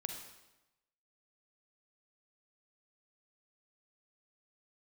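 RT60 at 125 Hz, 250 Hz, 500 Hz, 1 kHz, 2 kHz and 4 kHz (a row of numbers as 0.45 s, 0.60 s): 1.0 s, 1.0 s, 1.0 s, 1.0 s, 0.90 s, 0.85 s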